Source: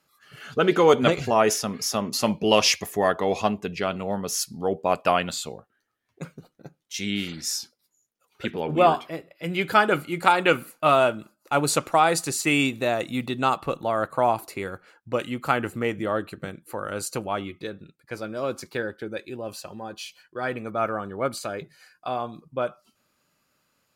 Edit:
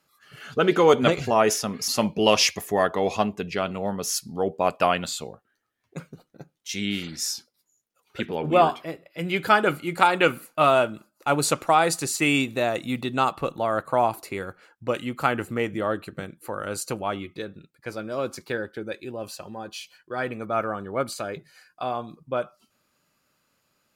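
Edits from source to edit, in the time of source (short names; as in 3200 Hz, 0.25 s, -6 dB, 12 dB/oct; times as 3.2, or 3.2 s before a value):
1.88–2.13 cut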